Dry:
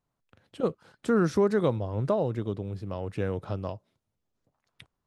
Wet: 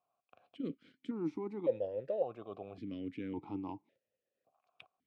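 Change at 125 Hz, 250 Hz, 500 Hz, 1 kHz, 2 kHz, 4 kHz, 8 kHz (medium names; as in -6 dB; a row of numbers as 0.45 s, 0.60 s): -19.5 dB, -10.0 dB, -10.0 dB, -12.5 dB, -18.5 dB, under -10 dB, no reading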